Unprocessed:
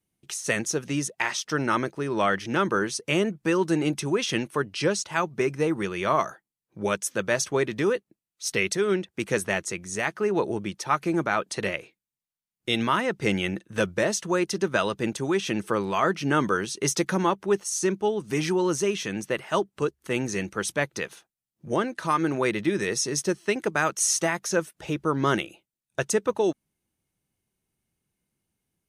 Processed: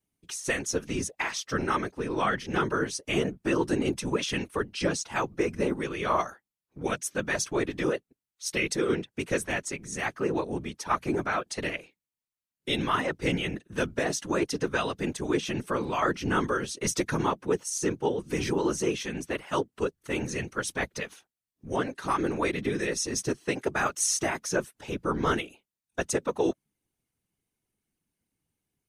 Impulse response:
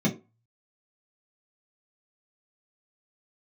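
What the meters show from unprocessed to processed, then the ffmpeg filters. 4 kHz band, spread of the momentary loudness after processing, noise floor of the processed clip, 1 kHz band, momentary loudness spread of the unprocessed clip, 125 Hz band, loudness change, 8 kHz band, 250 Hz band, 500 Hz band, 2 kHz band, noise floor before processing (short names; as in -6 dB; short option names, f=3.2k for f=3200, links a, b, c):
-3.0 dB, 6 LU, under -85 dBFS, -3.0 dB, 6 LU, -3.0 dB, -3.0 dB, -3.0 dB, -3.0 dB, -4.0 dB, -3.0 dB, under -85 dBFS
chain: -af "bandreject=f=590:w=12,afftfilt=real='hypot(re,im)*cos(2*PI*random(0))':imag='hypot(re,im)*sin(2*PI*random(1))':win_size=512:overlap=0.75,volume=3dB"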